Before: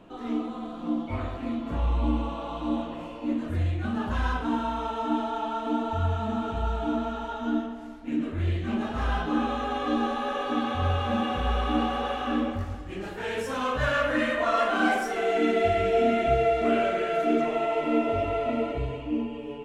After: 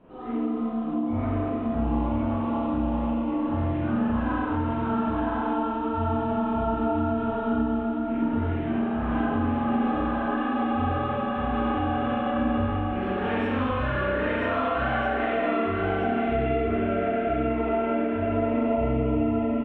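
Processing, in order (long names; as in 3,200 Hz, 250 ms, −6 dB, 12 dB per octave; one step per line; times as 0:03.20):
0:12.96–0:15.48: high-shelf EQ 2,900 Hz +10.5 dB
spring reverb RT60 1.5 s, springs 31/43 ms, chirp 75 ms, DRR −10 dB
downward compressor, threshold −17 dBFS, peak gain reduction 9 dB
high-frequency loss of the air 450 metres
single-tap delay 979 ms −3 dB
level −5 dB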